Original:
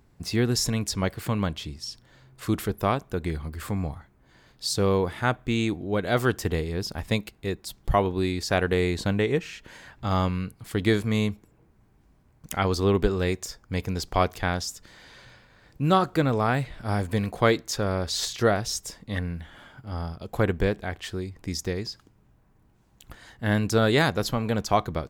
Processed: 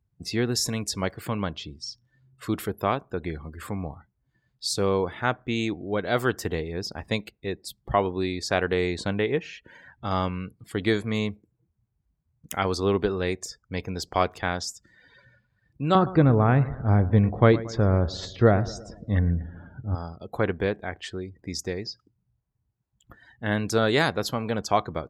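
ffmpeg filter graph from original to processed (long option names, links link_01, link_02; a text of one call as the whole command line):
ffmpeg -i in.wav -filter_complex "[0:a]asettb=1/sr,asplit=3[link_01][link_02][link_03];[link_01]atrim=end=15.954[link_04];[link_02]atrim=start=15.95:end=19.95,asetpts=PTS-STARTPTS,afade=type=in:duration=0.004:curve=qsin,afade=type=out:start_time=3.996:duration=0.004:curve=qsin,aemphasis=mode=reproduction:type=riaa,aecho=1:1:114|228|342|456|570:0.141|0.0805|0.0459|0.0262|0.0149,atrim=end_sample=176400[link_05];[link_03]atrim=start=19.946[link_06];[link_04][link_05]acrossfade=duration=0.004:curve1=hsin:curve2=qsin[link_07];[link_07][link_06]acrossfade=duration=0.004:curve1=qsin:curve2=hsin,afftdn=noise_reduction=24:noise_floor=-46,highpass=67,bass=frequency=250:gain=-4,treble=frequency=4000:gain=0" out.wav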